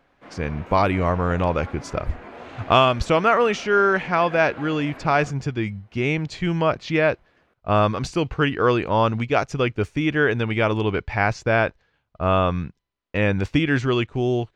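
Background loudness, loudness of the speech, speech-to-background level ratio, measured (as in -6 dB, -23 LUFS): -40.0 LUFS, -21.5 LUFS, 18.5 dB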